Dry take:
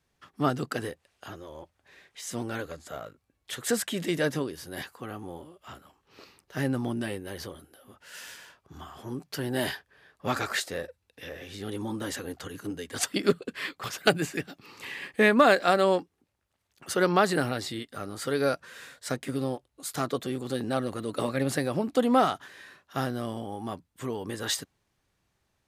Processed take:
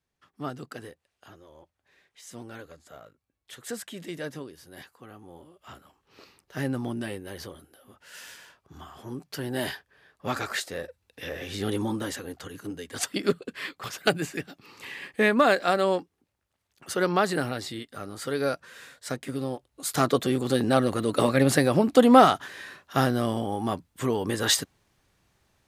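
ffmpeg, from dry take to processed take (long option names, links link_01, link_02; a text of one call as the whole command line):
ffmpeg -i in.wav -af "volume=15.5dB,afade=type=in:start_time=5.26:duration=0.44:silence=0.421697,afade=type=in:start_time=10.75:duration=0.89:silence=0.375837,afade=type=out:start_time=11.64:duration=0.53:silence=0.375837,afade=type=in:start_time=19.5:duration=0.54:silence=0.398107" out.wav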